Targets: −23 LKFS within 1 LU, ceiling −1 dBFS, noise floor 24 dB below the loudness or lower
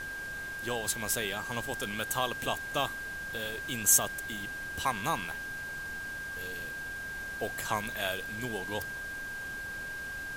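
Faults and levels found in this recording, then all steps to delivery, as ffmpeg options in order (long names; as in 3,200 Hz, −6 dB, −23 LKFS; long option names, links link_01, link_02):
interfering tone 1,600 Hz; level of the tone −37 dBFS; background noise floor −40 dBFS; target noise floor −57 dBFS; integrated loudness −33.0 LKFS; sample peak −9.0 dBFS; target loudness −23.0 LKFS
→ -af "bandreject=frequency=1600:width=30"
-af "afftdn=noise_reduction=17:noise_floor=-40"
-af "volume=10dB,alimiter=limit=-1dB:level=0:latency=1"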